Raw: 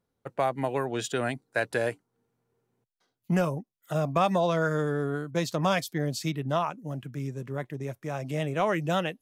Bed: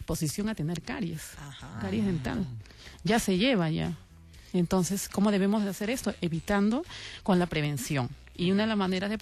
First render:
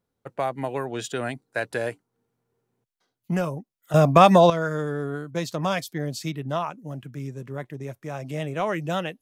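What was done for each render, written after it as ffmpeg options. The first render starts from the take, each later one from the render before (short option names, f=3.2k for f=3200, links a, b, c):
-filter_complex "[0:a]asplit=3[a][b][c];[a]atrim=end=3.942[d];[b]atrim=start=3.938:end=4.502,asetpts=PTS-STARTPTS,volume=10.5dB[e];[c]atrim=start=4.498[f];[d][e]acrossfade=d=0.004:c1=hsin:c2=hsin[g];[g][f]acrossfade=d=0.004:c1=hsin:c2=hsin"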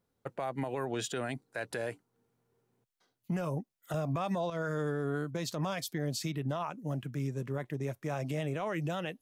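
-af "acompressor=threshold=-25dB:ratio=4,alimiter=level_in=1.5dB:limit=-24dB:level=0:latency=1:release=78,volume=-1.5dB"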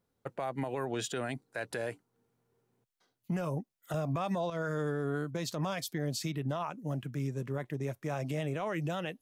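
-af anull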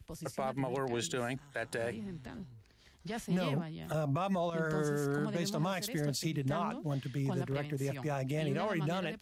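-filter_complex "[1:a]volume=-14.5dB[a];[0:a][a]amix=inputs=2:normalize=0"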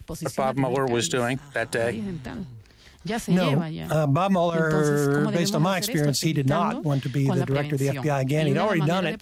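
-af "volume=11.5dB"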